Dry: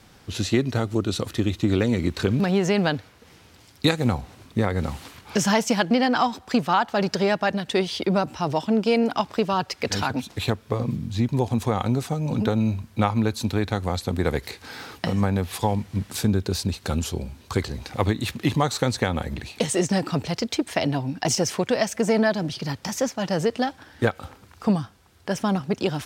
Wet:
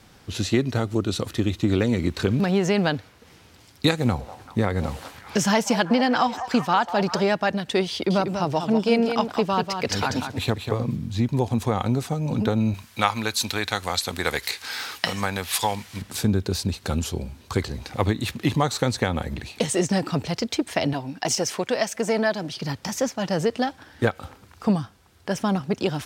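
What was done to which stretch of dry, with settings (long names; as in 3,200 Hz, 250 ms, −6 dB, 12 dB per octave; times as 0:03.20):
0:03.96–0:07.24: echo through a band-pass that steps 193 ms, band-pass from 730 Hz, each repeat 0.7 octaves, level −9 dB
0:07.91–0:10.86: single-tap delay 193 ms −7 dB
0:12.74–0:16.02: tilt shelving filter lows −10 dB, about 700 Hz
0:20.93–0:22.61: low-shelf EQ 200 Hz −10.5 dB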